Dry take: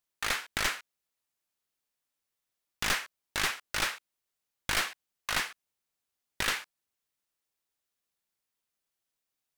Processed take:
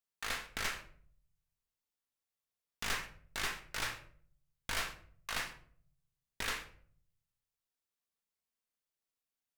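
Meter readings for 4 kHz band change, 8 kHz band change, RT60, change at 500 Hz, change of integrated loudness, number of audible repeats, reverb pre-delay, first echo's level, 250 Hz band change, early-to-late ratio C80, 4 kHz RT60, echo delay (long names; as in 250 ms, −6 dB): −7.5 dB, −7.5 dB, 0.55 s, −6.5 dB, −7.5 dB, no echo audible, 4 ms, no echo audible, −7.0 dB, 15.0 dB, 0.35 s, no echo audible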